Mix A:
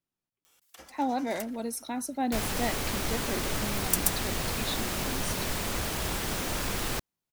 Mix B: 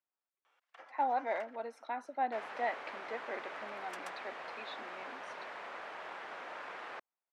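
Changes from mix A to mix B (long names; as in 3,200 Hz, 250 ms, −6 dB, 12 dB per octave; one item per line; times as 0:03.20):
second sound −7.0 dB
master: add flat-topped band-pass 1,100 Hz, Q 0.71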